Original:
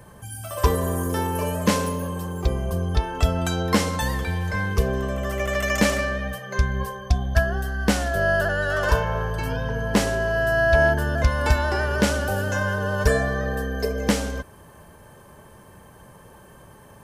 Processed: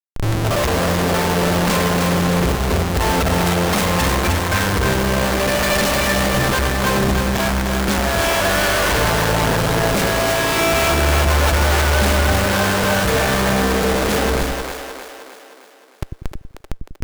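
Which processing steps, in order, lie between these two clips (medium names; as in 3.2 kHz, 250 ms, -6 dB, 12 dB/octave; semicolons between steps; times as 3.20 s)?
self-modulated delay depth 0.43 ms; treble shelf 10 kHz -11 dB; Schmitt trigger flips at -37 dBFS; on a send: two-band feedback delay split 340 Hz, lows 96 ms, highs 309 ms, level -4.5 dB; on the sum: trim +6.5 dB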